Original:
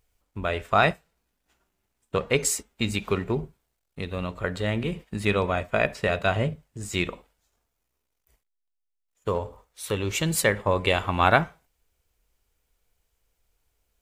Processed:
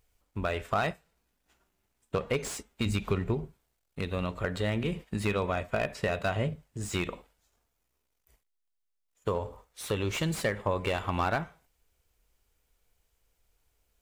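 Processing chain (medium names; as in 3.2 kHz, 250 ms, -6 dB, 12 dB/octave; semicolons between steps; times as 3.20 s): 2.86–3.34 s: bass shelf 140 Hz +10 dB; compression 2.5:1, threshold -27 dBFS, peak gain reduction 10 dB; slew-rate limiter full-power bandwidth 98 Hz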